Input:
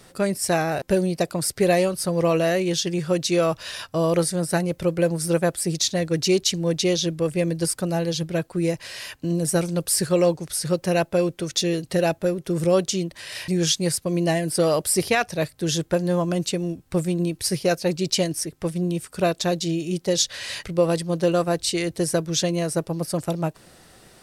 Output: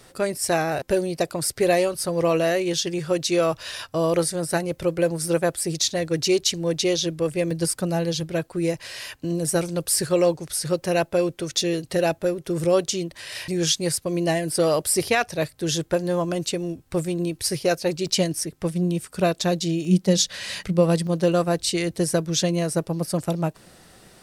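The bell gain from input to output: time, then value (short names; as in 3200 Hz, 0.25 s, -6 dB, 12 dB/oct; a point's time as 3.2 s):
bell 190 Hz 0.29 oct
-9 dB
from 7.51 s +0.5 dB
from 8.2 s -7 dB
from 18.07 s +3 dB
from 19.85 s +12.5 dB
from 21.07 s +3.5 dB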